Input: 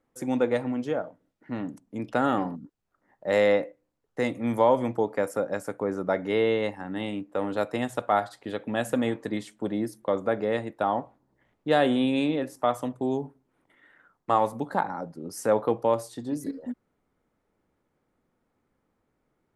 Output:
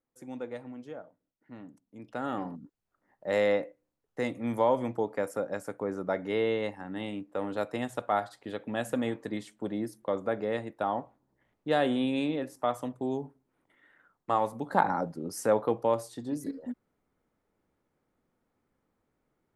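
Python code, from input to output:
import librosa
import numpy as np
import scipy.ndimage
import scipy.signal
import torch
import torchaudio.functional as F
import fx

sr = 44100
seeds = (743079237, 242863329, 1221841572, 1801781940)

y = fx.gain(x, sr, db=fx.line((1.97, -14.0), (2.59, -4.5), (14.62, -4.5), (14.88, 5.0), (15.6, -3.0)))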